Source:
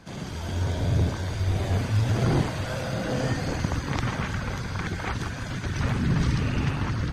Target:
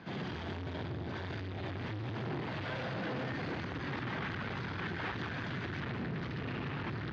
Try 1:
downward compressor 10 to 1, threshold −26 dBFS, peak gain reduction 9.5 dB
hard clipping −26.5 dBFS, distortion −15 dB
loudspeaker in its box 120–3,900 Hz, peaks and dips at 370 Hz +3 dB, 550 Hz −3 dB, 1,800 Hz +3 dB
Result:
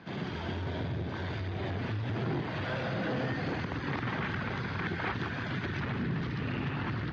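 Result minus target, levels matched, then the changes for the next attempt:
hard clipping: distortion −9 dB
change: hard clipping −34.5 dBFS, distortion −7 dB

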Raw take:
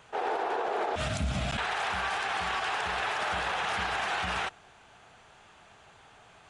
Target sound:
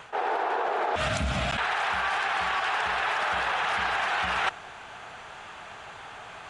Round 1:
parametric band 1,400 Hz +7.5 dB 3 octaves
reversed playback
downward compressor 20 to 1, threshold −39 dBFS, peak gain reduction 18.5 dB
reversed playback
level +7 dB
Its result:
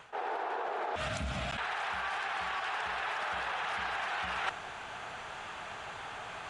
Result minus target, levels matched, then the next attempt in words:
downward compressor: peak gain reduction +8 dB
parametric band 1,400 Hz +7.5 dB 3 octaves
reversed playback
downward compressor 20 to 1, threshold −30.5 dBFS, peak gain reduction 10.5 dB
reversed playback
level +7 dB

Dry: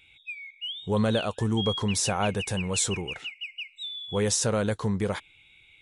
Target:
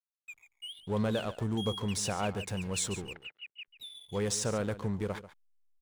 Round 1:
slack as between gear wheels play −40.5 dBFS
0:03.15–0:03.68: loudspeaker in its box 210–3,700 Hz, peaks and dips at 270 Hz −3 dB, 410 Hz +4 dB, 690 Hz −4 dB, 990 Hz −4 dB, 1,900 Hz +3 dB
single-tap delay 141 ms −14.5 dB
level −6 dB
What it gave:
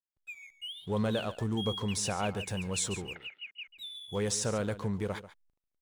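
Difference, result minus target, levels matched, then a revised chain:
slack as between gear wheels: distortion −7 dB
slack as between gear wheels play −32.5 dBFS
0:03.15–0:03.68: loudspeaker in its box 210–3,700 Hz, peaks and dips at 270 Hz −3 dB, 410 Hz +4 dB, 690 Hz −4 dB, 990 Hz −4 dB, 1,900 Hz +3 dB
single-tap delay 141 ms −14.5 dB
level −6 dB

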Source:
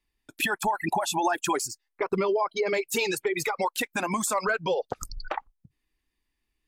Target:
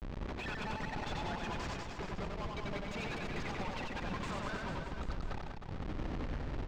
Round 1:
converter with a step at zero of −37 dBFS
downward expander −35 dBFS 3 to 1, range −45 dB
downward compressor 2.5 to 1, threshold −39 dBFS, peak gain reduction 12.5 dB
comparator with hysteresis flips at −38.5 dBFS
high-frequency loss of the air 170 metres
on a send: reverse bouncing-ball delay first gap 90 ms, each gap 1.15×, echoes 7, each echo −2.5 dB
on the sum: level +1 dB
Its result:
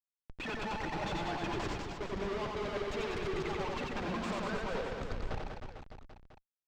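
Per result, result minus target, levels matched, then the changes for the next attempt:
converter with a step at zero: distortion −6 dB; 500 Hz band +3.0 dB
change: converter with a step at zero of −30.5 dBFS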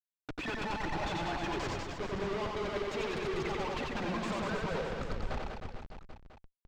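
500 Hz band +3.0 dB
add after downward compressor: parametric band 370 Hz −13 dB 2.1 octaves

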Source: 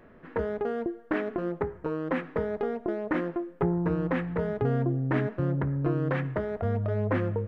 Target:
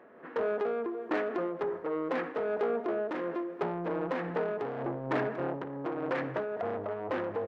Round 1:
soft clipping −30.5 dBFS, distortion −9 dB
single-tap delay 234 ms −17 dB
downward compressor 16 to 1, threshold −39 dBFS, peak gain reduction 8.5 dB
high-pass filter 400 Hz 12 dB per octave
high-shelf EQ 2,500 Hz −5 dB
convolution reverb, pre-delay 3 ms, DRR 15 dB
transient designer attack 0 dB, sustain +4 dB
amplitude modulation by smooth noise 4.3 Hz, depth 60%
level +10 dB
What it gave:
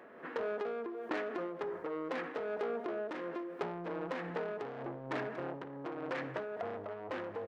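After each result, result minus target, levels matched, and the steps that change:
downward compressor: peak gain reduction +8.5 dB; 4,000 Hz band +5.0 dB
remove: downward compressor 16 to 1, threshold −39 dBFS, peak gain reduction 8.5 dB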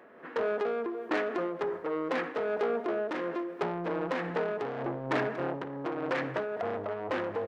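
4,000 Hz band +5.0 dB
change: high-shelf EQ 2,500 Hz −14.5 dB

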